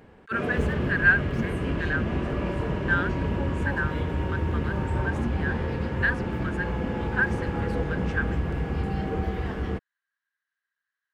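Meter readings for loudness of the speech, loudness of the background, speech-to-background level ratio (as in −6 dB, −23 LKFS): −29.5 LKFS, −29.0 LKFS, −0.5 dB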